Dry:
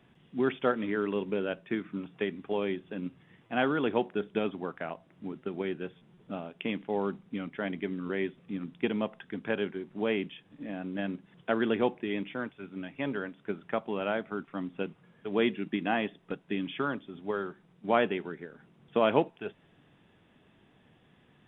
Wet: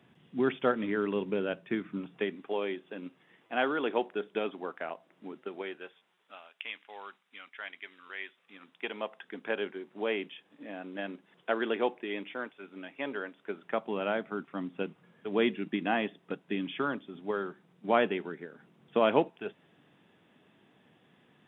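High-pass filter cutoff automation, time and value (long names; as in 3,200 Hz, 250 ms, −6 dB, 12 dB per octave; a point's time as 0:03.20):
0:01.96 100 Hz
0:02.48 340 Hz
0:05.37 340 Hz
0:06.39 1,400 Hz
0:08.15 1,400 Hz
0:09.38 360 Hz
0:13.49 360 Hz
0:13.96 160 Hz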